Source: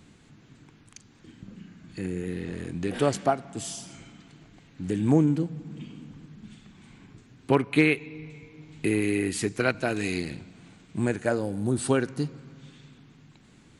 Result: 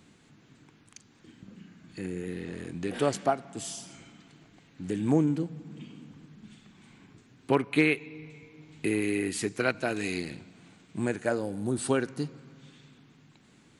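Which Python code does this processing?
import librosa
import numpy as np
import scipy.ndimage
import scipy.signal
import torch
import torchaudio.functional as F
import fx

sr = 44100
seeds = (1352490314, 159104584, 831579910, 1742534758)

y = fx.low_shelf(x, sr, hz=91.0, db=-11.0)
y = F.gain(torch.from_numpy(y), -2.0).numpy()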